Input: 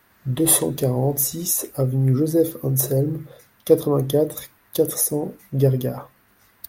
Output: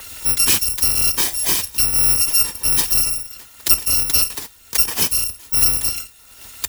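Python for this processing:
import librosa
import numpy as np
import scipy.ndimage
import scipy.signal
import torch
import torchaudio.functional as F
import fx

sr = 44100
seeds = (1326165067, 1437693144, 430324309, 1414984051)

y = fx.bit_reversed(x, sr, seeds[0], block=256)
y = fx.band_squash(y, sr, depth_pct=70)
y = y * 10.0 ** (2.5 / 20.0)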